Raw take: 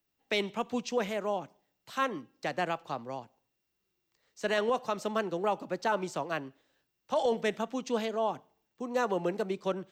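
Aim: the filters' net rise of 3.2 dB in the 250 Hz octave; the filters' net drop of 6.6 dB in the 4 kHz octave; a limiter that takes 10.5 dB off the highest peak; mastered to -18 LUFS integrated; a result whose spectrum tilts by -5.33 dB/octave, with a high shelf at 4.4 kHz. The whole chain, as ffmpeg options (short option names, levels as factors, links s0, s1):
-af "equalizer=f=250:t=o:g=4,equalizer=f=4000:t=o:g=-6.5,highshelf=f=4400:g=-5.5,volume=10.6,alimiter=limit=0.422:level=0:latency=1"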